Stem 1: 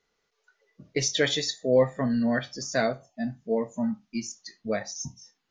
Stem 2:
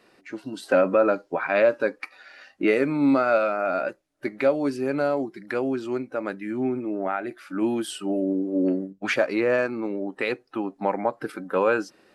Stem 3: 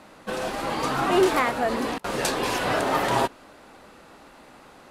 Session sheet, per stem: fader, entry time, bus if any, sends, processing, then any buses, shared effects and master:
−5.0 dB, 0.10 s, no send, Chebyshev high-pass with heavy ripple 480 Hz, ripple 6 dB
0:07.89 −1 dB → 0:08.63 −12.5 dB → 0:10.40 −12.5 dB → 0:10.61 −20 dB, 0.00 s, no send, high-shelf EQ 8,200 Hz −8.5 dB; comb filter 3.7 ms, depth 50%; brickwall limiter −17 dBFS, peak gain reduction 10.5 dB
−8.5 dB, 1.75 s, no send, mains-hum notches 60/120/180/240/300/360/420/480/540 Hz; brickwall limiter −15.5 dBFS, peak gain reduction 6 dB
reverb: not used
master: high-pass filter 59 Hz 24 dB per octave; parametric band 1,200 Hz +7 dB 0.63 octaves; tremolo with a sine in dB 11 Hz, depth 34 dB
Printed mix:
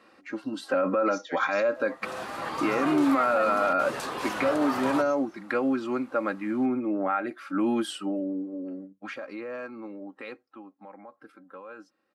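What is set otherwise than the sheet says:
stem 1 −5.0 dB → −13.5 dB
master: missing tremolo with a sine in dB 11 Hz, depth 34 dB

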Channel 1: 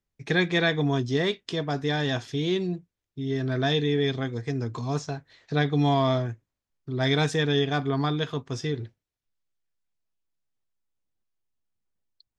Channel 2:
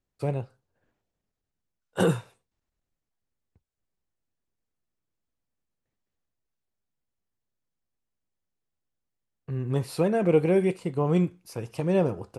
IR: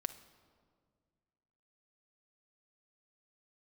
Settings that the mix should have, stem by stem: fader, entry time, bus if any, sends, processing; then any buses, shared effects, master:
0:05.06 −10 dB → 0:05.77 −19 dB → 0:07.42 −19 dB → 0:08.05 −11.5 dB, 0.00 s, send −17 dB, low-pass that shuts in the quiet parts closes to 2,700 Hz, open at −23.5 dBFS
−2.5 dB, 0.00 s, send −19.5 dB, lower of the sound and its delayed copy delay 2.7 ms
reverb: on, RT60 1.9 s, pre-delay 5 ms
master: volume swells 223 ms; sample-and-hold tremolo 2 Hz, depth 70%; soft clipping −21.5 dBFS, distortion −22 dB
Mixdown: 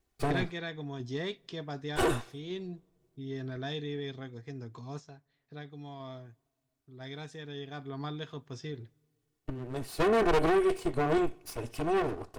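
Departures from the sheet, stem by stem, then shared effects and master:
stem 2 −2.5 dB → +7.5 dB
master: missing volume swells 223 ms

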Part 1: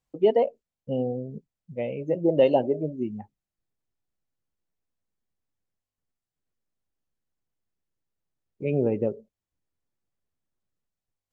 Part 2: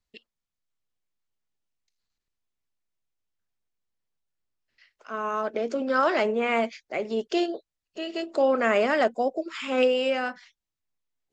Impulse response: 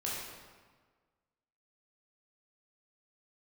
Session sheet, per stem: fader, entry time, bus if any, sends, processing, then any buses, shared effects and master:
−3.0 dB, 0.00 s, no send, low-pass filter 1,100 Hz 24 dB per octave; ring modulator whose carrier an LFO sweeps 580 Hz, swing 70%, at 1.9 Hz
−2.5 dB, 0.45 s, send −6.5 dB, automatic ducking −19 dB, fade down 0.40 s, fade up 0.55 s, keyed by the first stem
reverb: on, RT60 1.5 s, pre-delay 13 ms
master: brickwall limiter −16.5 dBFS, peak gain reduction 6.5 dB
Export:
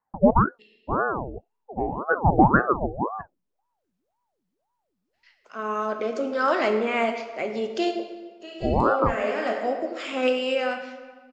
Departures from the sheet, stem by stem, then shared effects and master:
stem 1 −3.0 dB → +5.5 dB
master: missing brickwall limiter −16.5 dBFS, peak gain reduction 6.5 dB

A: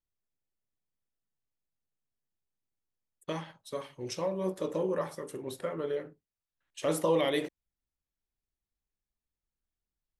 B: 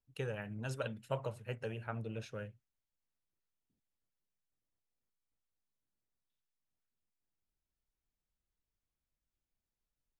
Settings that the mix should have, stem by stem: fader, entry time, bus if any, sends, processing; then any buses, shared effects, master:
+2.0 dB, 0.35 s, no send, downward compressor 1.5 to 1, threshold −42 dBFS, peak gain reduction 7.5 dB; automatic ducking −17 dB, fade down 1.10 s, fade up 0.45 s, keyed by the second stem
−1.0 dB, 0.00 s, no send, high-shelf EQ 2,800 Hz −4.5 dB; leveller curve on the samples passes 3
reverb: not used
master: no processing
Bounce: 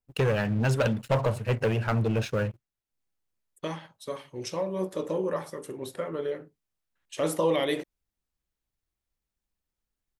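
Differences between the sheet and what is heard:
stem A: missing downward compressor 1.5 to 1, threshold −42 dBFS, peak gain reduction 7.5 dB
stem B −1.0 dB → +7.0 dB

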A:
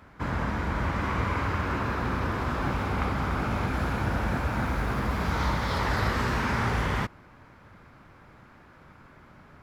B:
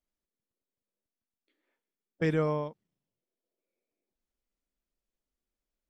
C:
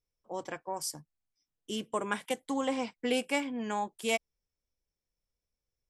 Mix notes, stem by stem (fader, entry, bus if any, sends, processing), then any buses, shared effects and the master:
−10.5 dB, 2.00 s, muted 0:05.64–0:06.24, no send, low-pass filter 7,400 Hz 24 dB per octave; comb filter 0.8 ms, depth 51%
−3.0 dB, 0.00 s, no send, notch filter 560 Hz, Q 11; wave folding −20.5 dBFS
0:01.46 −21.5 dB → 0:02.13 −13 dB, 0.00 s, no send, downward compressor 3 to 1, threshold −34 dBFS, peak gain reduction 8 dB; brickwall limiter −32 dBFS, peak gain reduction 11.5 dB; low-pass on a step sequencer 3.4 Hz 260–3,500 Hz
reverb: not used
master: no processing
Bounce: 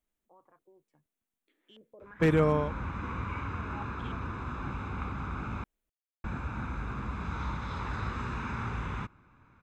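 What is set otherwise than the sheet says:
stem B −3.0 dB → +4.0 dB
master: extra parametric band 4,900 Hz −10 dB 0.48 octaves

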